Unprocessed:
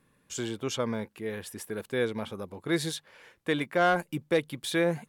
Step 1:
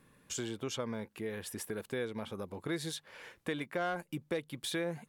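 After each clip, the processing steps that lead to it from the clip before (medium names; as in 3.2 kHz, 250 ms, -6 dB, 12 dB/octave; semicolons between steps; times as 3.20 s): compression 2.5:1, threshold -42 dBFS, peak gain reduction 14.5 dB; trim +3 dB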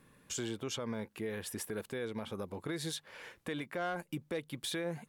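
peak limiter -29 dBFS, peak gain reduction 6 dB; trim +1 dB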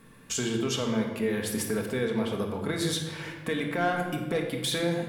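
simulated room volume 1300 m³, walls mixed, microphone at 1.6 m; trim +7 dB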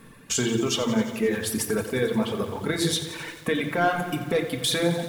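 reverb removal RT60 1.9 s; bit-crushed delay 88 ms, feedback 80%, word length 8-bit, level -12.5 dB; trim +5.5 dB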